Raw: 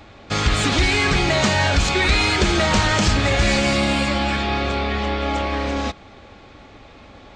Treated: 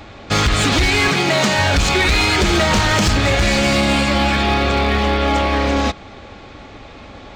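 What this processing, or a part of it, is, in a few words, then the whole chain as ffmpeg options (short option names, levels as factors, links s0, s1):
limiter into clipper: -filter_complex "[0:a]alimiter=limit=0.266:level=0:latency=1:release=267,asoftclip=type=hard:threshold=0.141,asettb=1/sr,asplit=3[s0][s1][s2];[s0]atrim=end=1.084[s3];[s1]atrim=start=1.08:end=1.59,asetpts=PTS-STARTPTS,afade=t=in:d=0.004:c=qsin,afade=t=out:st=0.506:d=0.004:c=qsin,highpass=f=130:w=0.5412,highpass=f=130:w=1.3066[s4];[s2]atrim=start=1.586[s5];[s3][s4]acrossfade=d=0.004:c1=hsin:c2=qsin[s6];[s6][s5]acrossfade=d=0.004:c1=qsin:c2=hsin,volume=2.11"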